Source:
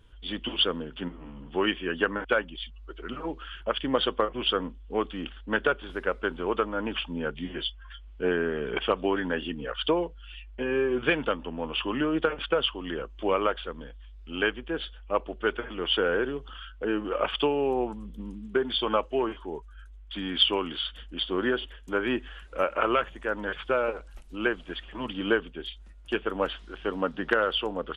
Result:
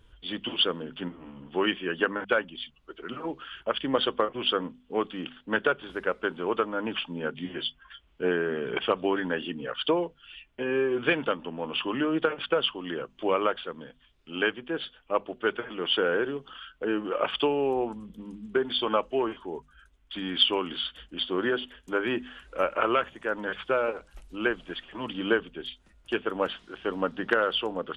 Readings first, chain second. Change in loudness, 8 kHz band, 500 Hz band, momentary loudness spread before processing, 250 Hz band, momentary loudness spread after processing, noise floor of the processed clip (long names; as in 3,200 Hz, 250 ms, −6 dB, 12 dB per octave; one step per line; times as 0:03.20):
0.0 dB, can't be measured, 0.0 dB, 13 LU, −0.5 dB, 13 LU, −62 dBFS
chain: mains-hum notches 50/100/150/200/250 Hz